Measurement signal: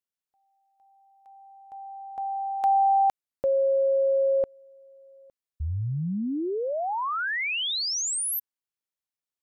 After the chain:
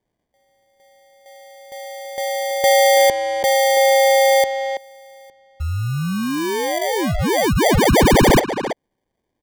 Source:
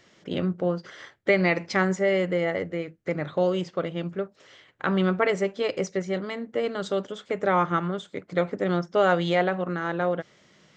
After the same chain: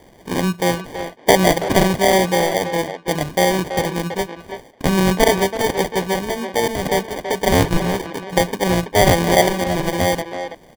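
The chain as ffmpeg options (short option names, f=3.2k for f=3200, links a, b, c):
-filter_complex "[0:a]highshelf=f=2.4k:g=10.5,acrusher=samples=33:mix=1:aa=0.000001,asplit=2[a][b];[b]adelay=330,highpass=300,lowpass=3.4k,asoftclip=type=hard:threshold=-16dB,volume=-7dB[c];[a][c]amix=inputs=2:normalize=0,volume=6.5dB"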